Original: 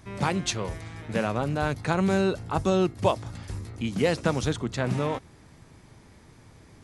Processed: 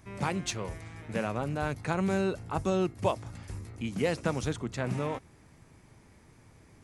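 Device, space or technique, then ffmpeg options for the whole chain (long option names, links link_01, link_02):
exciter from parts: -filter_complex "[0:a]asplit=2[link_01][link_02];[link_02]highpass=frequency=2200:width=0.5412,highpass=frequency=2200:width=1.3066,asoftclip=type=tanh:threshold=-27.5dB,highpass=frequency=2100:width=0.5412,highpass=frequency=2100:width=1.3066,volume=-9.5dB[link_03];[link_01][link_03]amix=inputs=2:normalize=0,volume=-5dB"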